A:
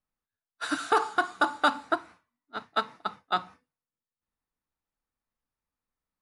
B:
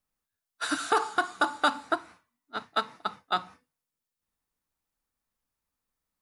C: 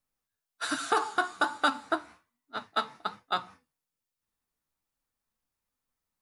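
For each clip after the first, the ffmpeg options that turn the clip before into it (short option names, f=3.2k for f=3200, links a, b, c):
-filter_complex "[0:a]highshelf=f=5k:g=6,asplit=2[a][b];[b]acompressor=threshold=-32dB:ratio=6,volume=-2dB[c];[a][c]amix=inputs=2:normalize=0,volume=-3dB"
-af "flanger=delay=7.3:depth=6.5:regen=55:speed=1.2:shape=sinusoidal,volume=3dB"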